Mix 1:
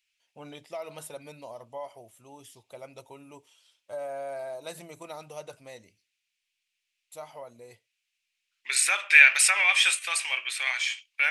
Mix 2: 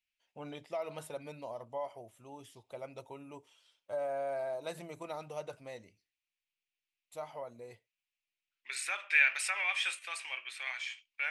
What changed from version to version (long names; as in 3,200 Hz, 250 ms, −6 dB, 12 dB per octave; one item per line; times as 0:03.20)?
second voice −8.5 dB
master: add high-shelf EQ 4,100 Hz −10 dB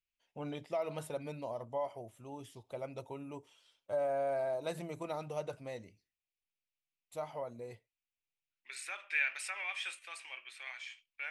second voice −7.0 dB
master: add low-shelf EQ 420 Hz +6.5 dB